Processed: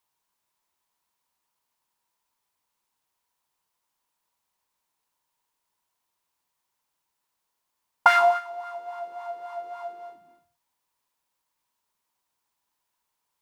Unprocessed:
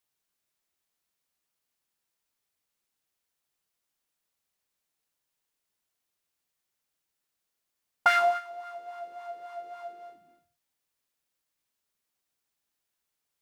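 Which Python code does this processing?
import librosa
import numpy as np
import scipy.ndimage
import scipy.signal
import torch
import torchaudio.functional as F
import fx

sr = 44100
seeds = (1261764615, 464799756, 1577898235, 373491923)

y = fx.peak_eq(x, sr, hz=960.0, db=14.5, octaves=0.4)
y = F.gain(torch.from_numpy(y), 2.0).numpy()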